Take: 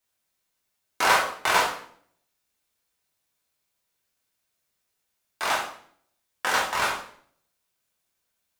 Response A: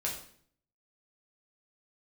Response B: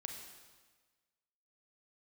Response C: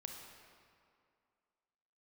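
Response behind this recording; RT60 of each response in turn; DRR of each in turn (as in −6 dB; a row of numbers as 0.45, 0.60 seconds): A; 0.55, 1.4, 2.3 seconds; −3.5, 3.0, 2.0 decibels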